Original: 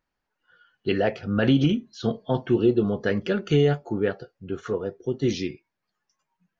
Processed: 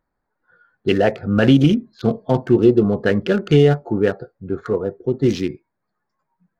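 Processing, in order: Wiener smoothing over 15 samples; gain +7 dB

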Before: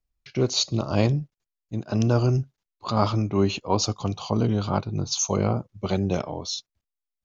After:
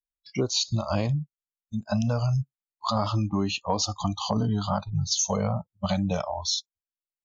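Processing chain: spectral noise reduction 29 dB; in parallel at -1 dB: limiter -18 dBFS, peak gain reduction 11.5 dB; on the sum: compressor, threshold -22 dBFS, peak gain reduction 9 dB

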